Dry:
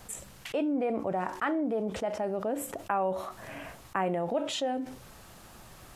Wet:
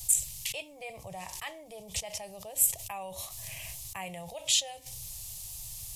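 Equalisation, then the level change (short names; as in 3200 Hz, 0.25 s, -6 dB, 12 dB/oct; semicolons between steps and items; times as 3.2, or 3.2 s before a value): EQ curve 130 Hz 0 dB, 340 Hz -25 dB, 6300 Hz +8 dB, 11000 Hz +11 dB; dynamic EQ 2300 Hz, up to +5 dB, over -56 dBFS, Q 1.4; fixed phaser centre 600 Hz, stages 4; +6.5 dB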